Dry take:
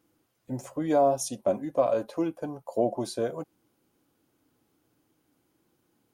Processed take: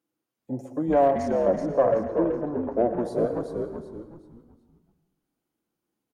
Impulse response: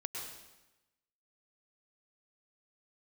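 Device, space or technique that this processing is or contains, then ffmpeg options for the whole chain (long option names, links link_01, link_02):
saturated reverb return: -filter_complex "[0:a]afwtdn=0.01,highpass=140,asplit=2[link_01][link_02];[1:a]atrim=start_sample=2205[link_03];[link_02][link_03]afir=irnorm=-1:irlink=0,asoftclip=type=tanh:threshold=-23dB,volume=-3dB[link_04];[link_01][link_04]amix=inputs=2:normalize=0,asettb=1/sr,asplit=3[link_05][link_06][link_07];[link_05]atrim=end=1.114[link_08];[link_06]atrim=start=1.11:end=2.77,asetpts=PTS-STARTPTS,afade=type=in:duration=0.004:curve=qsin,afade=type=out:start_time=1.656:duration=0.004:curve=qsin,lowpass=2600[link_09];[link_07]atrim=start=2.766[link_10];[link_08][link_09]acrossfade=duration=0.004:curve1=hsin:curve2=qsin[link_11];[link_11][link_10]acrossfade=duration=0.004:curve1=qsin:curve2=hsin,asplit=5[link_12][link_13][link_14][link_15][link_16];[link_13]adelay=377,afreqshift=-75,volume=-5.5dB[link_17];[link_14]adelay=754,afreqshift=-150,volume=-15.4dB[link_18];[link_15]adelay=1131,afreqshift=-225,volume=-25.3dB[link_19];[link_16]adelay=1508,afreqshift=-300,volume=-35.2dB[link_20];[link_12][link_17][link_18][link_19][link_20]amix=inputs=5:normalize=0"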